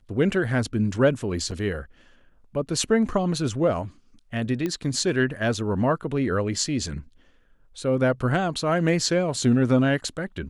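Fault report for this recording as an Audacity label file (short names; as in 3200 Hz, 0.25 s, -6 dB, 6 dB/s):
1.510000	1.520000	gap 6.3 ms
4.660000	4.660000	pop -15 dBFS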